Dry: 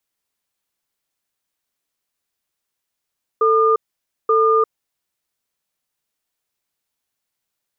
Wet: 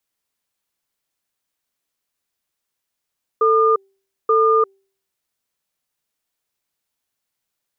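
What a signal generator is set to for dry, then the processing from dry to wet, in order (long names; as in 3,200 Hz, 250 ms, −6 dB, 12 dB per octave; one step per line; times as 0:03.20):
tone pair in a cadence 444 Hz, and 1,210 Hz, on 0.35 s, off 0.53 s, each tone −14.5 dBFS 1.70 s
hum removal 389 Hz, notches 2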